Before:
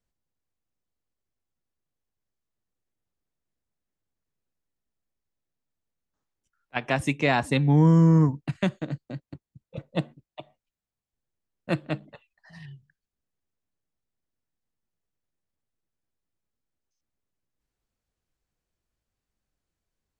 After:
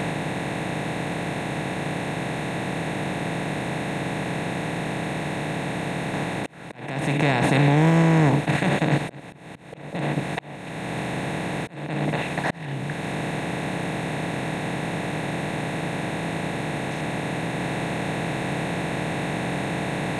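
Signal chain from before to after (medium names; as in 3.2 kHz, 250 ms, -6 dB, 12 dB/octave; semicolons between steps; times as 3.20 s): spectral levelling over time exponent 0.2; peak limiter -11 dBFS, peak gain reduction 11 dB; slow attack 586 ms; trim +1 dB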